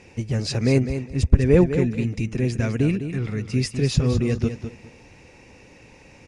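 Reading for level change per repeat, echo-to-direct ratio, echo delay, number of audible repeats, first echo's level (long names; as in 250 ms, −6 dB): −13.5 dB, −9.5 dB, 204 ms, 2, −9.5 dB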